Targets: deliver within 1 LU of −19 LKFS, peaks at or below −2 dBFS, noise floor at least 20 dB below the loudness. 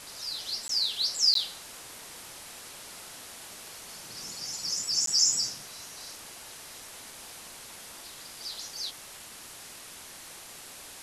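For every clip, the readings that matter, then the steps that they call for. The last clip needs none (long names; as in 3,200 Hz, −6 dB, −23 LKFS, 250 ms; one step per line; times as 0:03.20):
number of dropouts 3; longest dropout 13 ms; background noise floor −46 dBFS; target noise floor −48 dBFS; integrated loudness −27.5 LKFS; sample peak −11.5 dBFS; target loudness −19.0 LKFS
→ repair the gap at 0:00.68/0:01.34/0:05.06, 13 ms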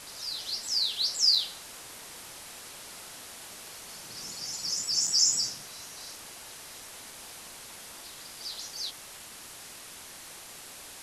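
number of dropouts 0; background noise floor −46 dBFS; target noise floor −48 dBFS
→ broadband denoise 6 dB, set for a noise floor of −46 dBFS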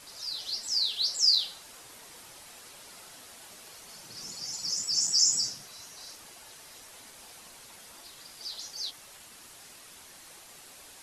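background noise floor −51 dBFS; integrated loudness −27.0 LKFS; sample peak −11.5 dBFS; target loudness −19.0 LKFS
→ level +8 dB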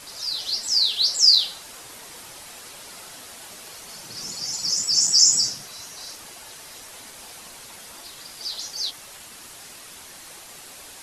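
integrated loudness −19.0 LKFS; sample peak −3.5 dBFS; background noise floor −43 dBFS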